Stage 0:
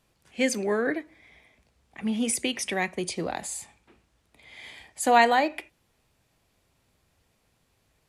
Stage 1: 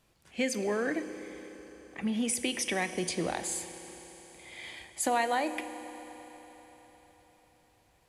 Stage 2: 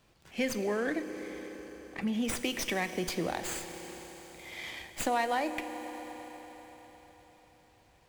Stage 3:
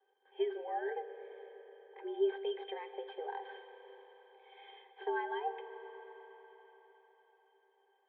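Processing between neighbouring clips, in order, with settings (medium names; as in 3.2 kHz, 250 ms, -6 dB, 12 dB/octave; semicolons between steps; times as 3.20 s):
compression 3:1, threshold -28 dBFS, peak gain reduction 11 dB; reverberation RT60 4.6 s, pre-delay 3 ms, DRR 10 dB
in parallel at +1 dB: compression, threshold -40 dBFS, peak gain reduction 15.5 dB; on the sum: sliding maximum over 3 samples; trim -3 dB
mistuned SSB +150 Hz 250–3000 Hz; pitch-class resonator G, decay 0.13 s; trim +7.5 dB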